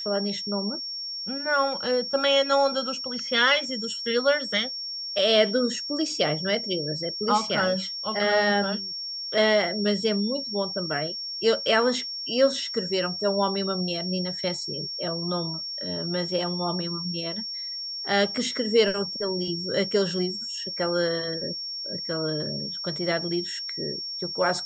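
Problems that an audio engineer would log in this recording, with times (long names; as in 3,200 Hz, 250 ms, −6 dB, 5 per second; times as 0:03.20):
whistle 5,500 Hz −31 dBFS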